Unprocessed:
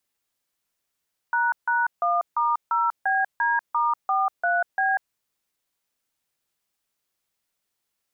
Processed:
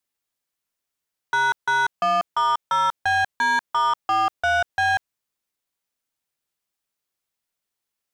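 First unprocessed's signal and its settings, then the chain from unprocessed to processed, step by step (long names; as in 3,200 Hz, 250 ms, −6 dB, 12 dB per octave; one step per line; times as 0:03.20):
touch tones "##1*0BD*43B", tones 192 ms, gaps 153 ms, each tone −22 dBFS
leveller curve on the samples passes 2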